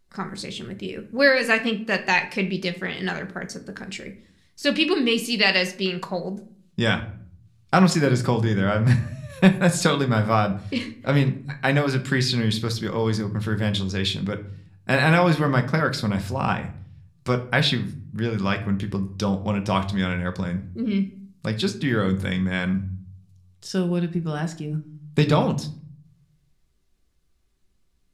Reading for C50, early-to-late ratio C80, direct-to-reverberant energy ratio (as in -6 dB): 13.5 dB, 18.0 dB, 6.0 dB